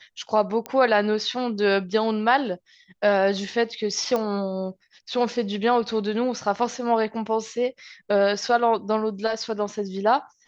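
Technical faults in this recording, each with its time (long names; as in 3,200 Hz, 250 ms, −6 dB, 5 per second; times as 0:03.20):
0:00.66: click −15 dBFS
0:04.16: click −13 dBFS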